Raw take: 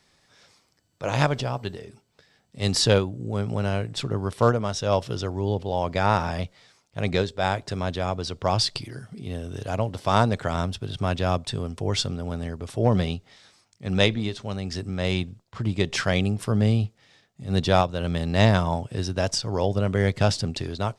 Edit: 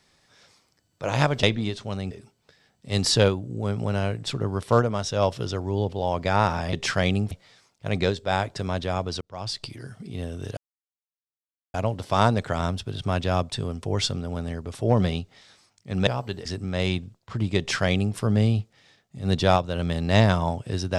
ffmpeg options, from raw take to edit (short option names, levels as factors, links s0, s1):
-filter_complex "[0:a]asplit=9[s0][s1][s2][s3][s4][s5][s6][s7][s8];[s0]atrim=end=1.432[s9];[s1]atrim=start=14.018:end=14.702[s10];[s2]atrim=start=1.808:end=6.432[s11];[s3]atrim=start=15.828:end=16.412[s12];[s4]atrim=start=6.428:end=8.33,asetpts=PTS-STARTPTS,afade=t=out:st=1.898:d=0.004:c=hsin[s13];[s5]atrim=start=8.33:end=9.69,asetpts=PTS-STARTPTS,afade=t=in:d=0.73,afade=t=out:st=1.356:d=0.004:c=hsin,apad=pad_dur=1.17[s14];[s6]atrim=start=9.69:end=14.022,asetpts=PTS-STARTPTS,afade=t=in:d=0.004:c=hsin[s15];[s7]atrim=start=1.428:end=1.812[s16];[s8]atrim=start=14.698[s17];[s9][s10]acrossfade=d=0.004:c1=hsin:c2=hsin[s18];[s18][s11]acrossfade=d=0.004:c1=hsin:c2=hsin[s19];[s19][s12]acrossfade=d=0.004:c1=hsin:c2=hsin[s20];[s13][s14][s15]concat=n=3:v=0:a=1[s21];[s20][s21]acrossfade=d=0.004:c1=hsin:c2=hsin[s22];[s22][s16]acrossfade=d=0.004:c1=hsin:c2=hsin[s23];[s23][s17]acrossfade=d=0.004:c1=hsin:c2=hsin"